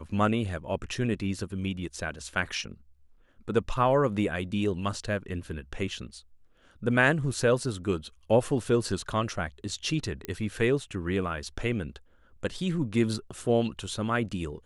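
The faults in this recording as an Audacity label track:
10.250000	10.250000	click −18 dBFS

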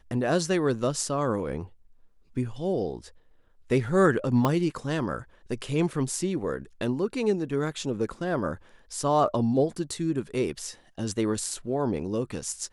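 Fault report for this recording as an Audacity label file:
4.450000	4.450000	click −11 dBFS

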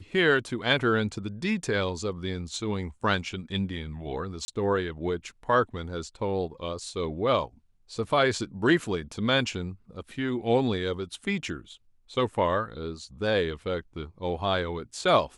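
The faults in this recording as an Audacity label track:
4.450000	4.480000	drop-out 30 ms

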